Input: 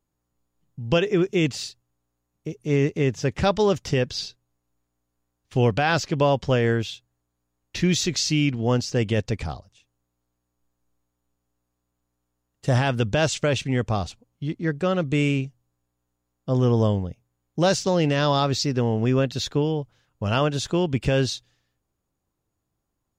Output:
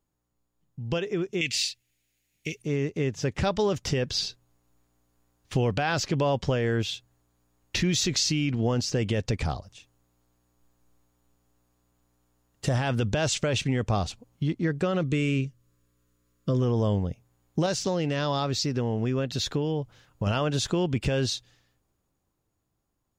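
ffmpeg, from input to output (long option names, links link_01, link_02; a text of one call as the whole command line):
ffmpeg -i in.wav -filter_complex "[0:a]asettb=1/sr,asplit=3[link_01][link_02][link_03];[link_01]atrim=end=1.414[link_04];[link_02]atrim=start=1.41:end=2.62,asetpts=PTS-STARTPTS,afade=type=in:duration=0.004:curve=qsin,afade=type=out:start_time=1.206:duration=0.004:curve=qsin,highshelf=frequency=1600:width_type=q:width=3:gain=12.5[link_05];[link_03]atrim=start=2.616[link_06];[link_04][link_05]acrossfade=duration=0.004:curve1=hsin:curve2=qsin[link_07];[link_07][link_06]acrossfade=duration=0.004:curve1=qsin:curve2=hsin,asettb=1/sr,asplit=3[link_08][link_09][link_10];[link_08]atrim=end=15.034[link_11];[link_09]atrim=start=15.03:end=16.62,asetpts=PTS-STARTPTS,afade=type=in:duration=0.004:curve=qsin,afade=type=out:start_time=1.586:duration=0.004:curve=qsin,asuperstop=centerf=780:order=4:qfactor=1.9[link_12];[link_10]atrim=start=16.616[link_13];[link_11][link_12]acrossfade=duration=0.004:curve1=hsin:curve2=qsin[link_14];[link_14][link_13]acrossfade=duration=0.004:curve1=qsin:curve2=hsin,asettb=1/sr,asplit=3[link_15][link_16][link_17];[link_15]atrim=end=17.664[link_18];[link_16]atrim=start=17.66:end=20.27,asetpts=PTS-STARTPTS,afade=type=in:duration=0.004:curve=qsin,afade=type=out:start_time=2.606:duration=0.004:curve=qsin,acompressor=threshold=-35dB:ratio=1.5:attack=3.2:release=140:knee=1:detection=peak[link_19];[link_17]atrim=start=20.266[link_20];[link_18][link_19]acrossfade=duration=0.004:curve1=hsin:curve2=qsin[link_21];[link_21][link_20]acrossfade=duration=0.004:curve1=qsin:curve2=hsin,dynaudnorm=framelen=200:gausssize=17:maxgain=11.5dB,alimiter=limit=-7.5dB:level=0:latency=1:release=21,acompressor=threshold=-29dB:ratio=2" out.wav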